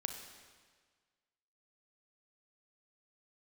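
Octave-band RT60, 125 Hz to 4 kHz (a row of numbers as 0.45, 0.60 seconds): 1.6, 1.6, 1.6, 1.6, 1.5, 1.5 seconds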